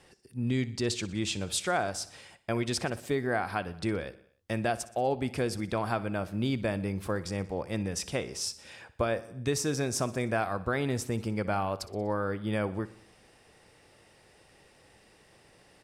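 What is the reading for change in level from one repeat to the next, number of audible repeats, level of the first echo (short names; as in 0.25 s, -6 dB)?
-4.5 dB, 4, -18.0 dB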